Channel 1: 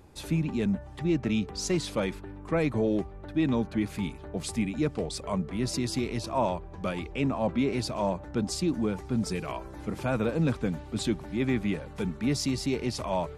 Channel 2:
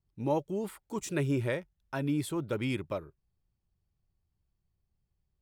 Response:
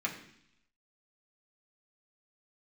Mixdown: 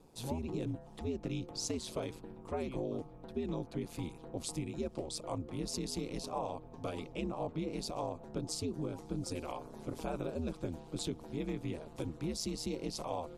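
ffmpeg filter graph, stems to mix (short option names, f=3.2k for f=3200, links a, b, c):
-filter_complex "[0:a]lowshelf=f=180:g=-8.5,aeval=exprs='val(0)*sin(2*PI*80*n/s)':c=same,volume=0dB[a];[1:a]lowpass=3.3k,asplit=2[b][c];[c]afreqshift=1.5[d];[b][d]amix=inputs=2:normalize=1,volume=-6dB,asplit=3[e][f][g];[e]atrim=end=0.73,asetpts=PTS-STARTPTS,afade=t=out:st=0.726:d=0.004:c=hsin[h];[f]atrim=start=0.73:end=2.59,asetpts=PTS-STARTPTS,volume=0[i];[g]atrim=start=2.59,asetpts=PTS-STARTPTS,afade=t=in:d=0.004:c=hsin[j];[h][i][j]concat=n=3:v=0:a=1[k];[a][k]amix=inputs=2:normalize=0,equalizer=f=1.8k:w=1.2:g=-11,acompressor=threshold=-33dB:ratio=6"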